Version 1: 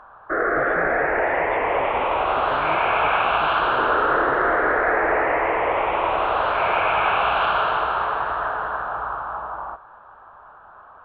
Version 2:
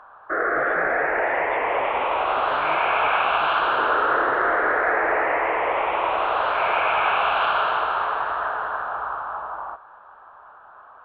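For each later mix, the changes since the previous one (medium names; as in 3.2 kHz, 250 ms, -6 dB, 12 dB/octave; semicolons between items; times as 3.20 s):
master: add bass shelf 280 Hz -10.5 dB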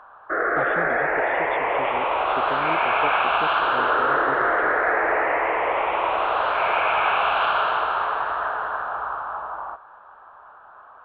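speech +9.0 dB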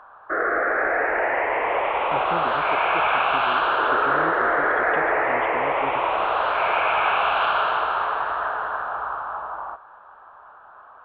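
speech: entry +1.55 s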